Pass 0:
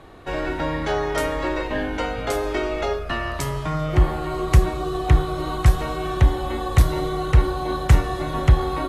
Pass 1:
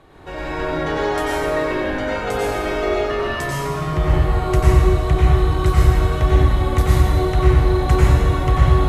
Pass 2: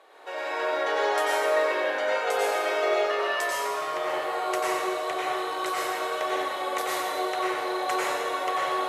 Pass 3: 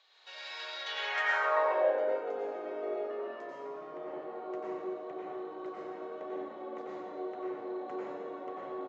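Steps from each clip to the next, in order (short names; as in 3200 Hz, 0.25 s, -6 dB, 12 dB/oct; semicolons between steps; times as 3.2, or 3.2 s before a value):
reverb RT60 2.1 s, pre-delay 87 ms, DRR -7.5 dB; gain -4.5 dB
Chebyshev high-pass 500 Hz, order 3; gain -1.5 dB
notches 50/100/150 Hz; band-pass sweep 4200 Hz -> 230 Hz, 0.83–2.39; downsampling 16000 Hz; gain +2.5 dB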